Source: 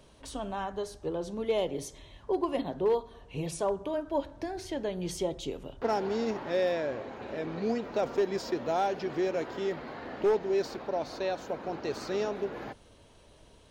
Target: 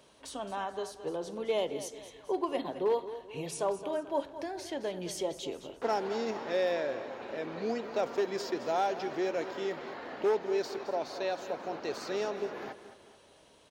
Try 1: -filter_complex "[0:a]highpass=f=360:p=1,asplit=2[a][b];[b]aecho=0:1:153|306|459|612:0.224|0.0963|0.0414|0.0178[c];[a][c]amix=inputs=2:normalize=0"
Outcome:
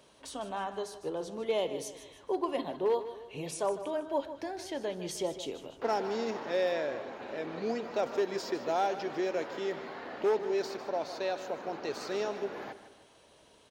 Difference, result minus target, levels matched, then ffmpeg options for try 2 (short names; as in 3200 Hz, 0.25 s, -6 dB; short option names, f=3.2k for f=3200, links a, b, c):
echo 64 ms early
-filter_complex "[0:a]highpass=f=360:p=1,asplit=2[a][b];[b]aecho=0:1:217|434|651|868:0.224|0.0963|0.0414|0.0178[c];[a][c]amix=inputs=2:normalize=0"